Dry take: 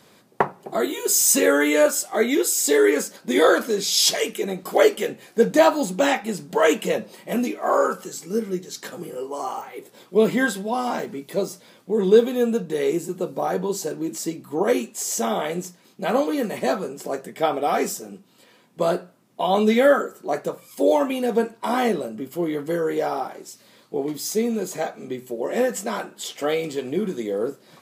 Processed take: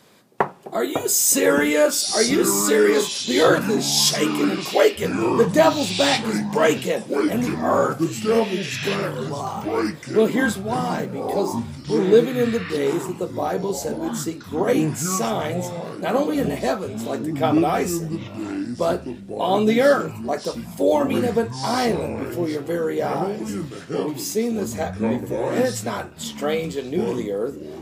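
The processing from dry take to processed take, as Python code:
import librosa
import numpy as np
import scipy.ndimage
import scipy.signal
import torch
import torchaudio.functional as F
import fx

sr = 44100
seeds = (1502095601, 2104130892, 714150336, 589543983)

y = fx.echo_pitch(x, sr, ms=383, semitones=-6, count=3, db_per_echo=-6.0)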